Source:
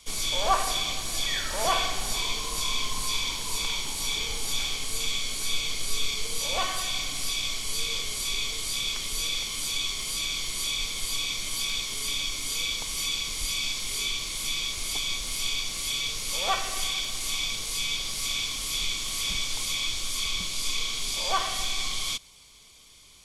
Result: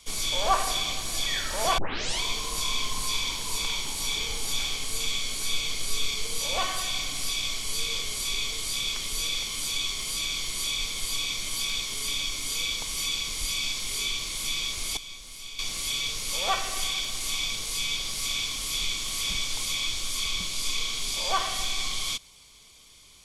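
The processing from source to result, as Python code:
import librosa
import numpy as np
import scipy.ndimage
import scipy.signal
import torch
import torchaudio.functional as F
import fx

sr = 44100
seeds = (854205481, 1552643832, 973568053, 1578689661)

y = fx.edit(x, sr, fx.tape_start(start_s=1.78, length_s=0.43),
    fx.clip_gain(start_s=14.97, length_s=0.62, db=-11.5), tone=tone)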